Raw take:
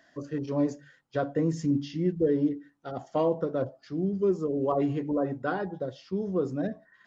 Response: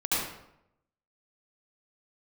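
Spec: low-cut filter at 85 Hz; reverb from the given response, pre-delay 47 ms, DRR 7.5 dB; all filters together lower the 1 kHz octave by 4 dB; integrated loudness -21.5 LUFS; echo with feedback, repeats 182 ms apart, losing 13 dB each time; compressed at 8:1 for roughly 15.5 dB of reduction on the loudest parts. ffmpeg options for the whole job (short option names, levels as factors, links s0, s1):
-filter_complex "[0:a]highpass=85,equalizer=f=1000:t=o:g=-6,acompressor=threshold=0.0126:ratio=8,aecho=1:1:182|364|546:0.224|0.0493|0.0108,asplit=2[s0][s1];[1:a]atrim=start_sample=2205,adelay=47[s2];[s1][s2]afir=irnorm=-1:irlink=0,volume=0.126[s3];[s0][s3]amix=inputs=2:normalize=0,volume=10.6"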